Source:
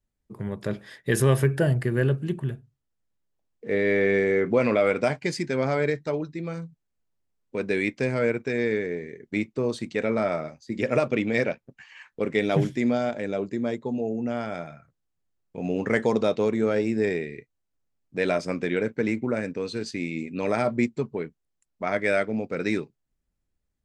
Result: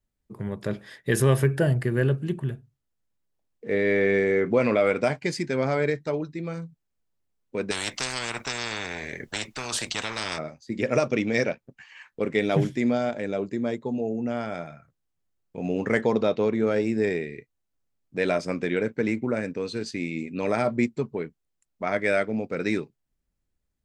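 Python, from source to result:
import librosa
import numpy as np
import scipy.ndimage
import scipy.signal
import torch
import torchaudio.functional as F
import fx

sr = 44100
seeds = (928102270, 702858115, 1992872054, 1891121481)

y = fx.spectral_comp(x, sr, ratio=10.0, at=(7.7, 10.37), fade=0.02)
y = fx.peak_eq(y, sr, hz=5700.0, db=14.0, octaves=0.26, at=(10.93, 11.5))
y = fx.lowpass(y, sr, hz=4900.0, slope=12, at=(16.01, 16.67))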